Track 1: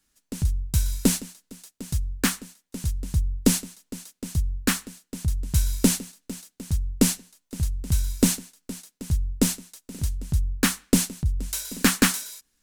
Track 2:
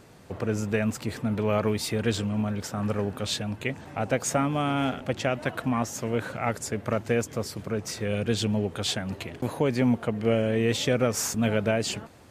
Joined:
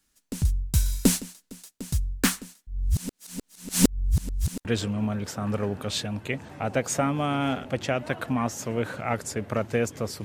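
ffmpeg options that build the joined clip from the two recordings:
-filter_complex "[0:a]apad=whole_dur=10.24,atrim=end=10.24,asplit=2[s0][s1];[s0]atrim=end=2.672[s2];[s1]atrim=start=2.668:end=4.652,asetpts=PTS-STARTPTS,areverse[s3];[1:a]atrim=start=2.008:end=7.6[s4];[s2][s3]acrossfade=d=0.004:c1=hsin:c2=hsin[s5];[s5][s4]acrossfade=d=0.004:c1=hsin:c2=hsin"

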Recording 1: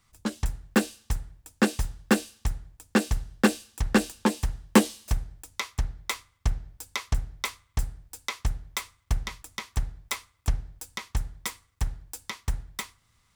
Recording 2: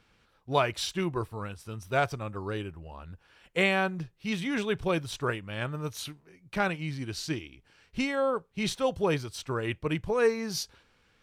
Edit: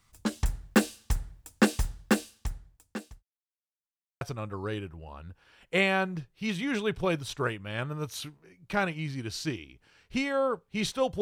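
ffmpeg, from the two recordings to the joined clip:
-filter_complex "[0:a]apad=whole_dur=11.21,atrim=end=11.21,asplit=2[s0][s1];[s0]atrim=end=3.23,asetpts=PTS-STARTPTS,afade=t=out:st=1.71:d=1.52[s2];[s1]atrim=start=3.23:end=4.21,asetpts=PTS-STARTPTS,volume=0[s3];[1:a]atrim=start=2.04:end=9.04,asetpts=PTS-STARTPTS,afade=t=in:d=0.004:c=hsin[s4];[s2][s3][s4]concat=n=3:v=0:a=1"

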